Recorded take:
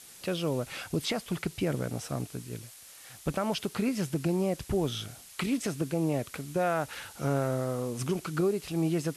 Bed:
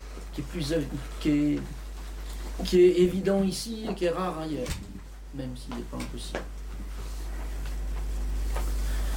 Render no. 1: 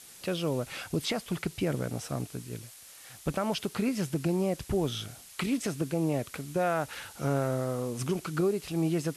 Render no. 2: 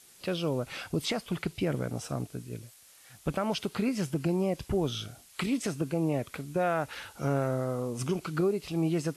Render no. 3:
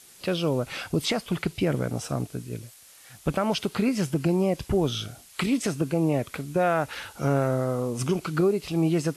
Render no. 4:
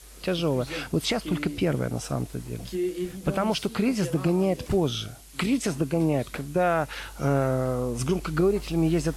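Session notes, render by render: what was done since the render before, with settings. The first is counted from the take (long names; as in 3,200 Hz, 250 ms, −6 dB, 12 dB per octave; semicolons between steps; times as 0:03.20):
no processing that can be heard
noise reduction from a noise print 6 dB
level +5 dB
mix in bed −9.5 dB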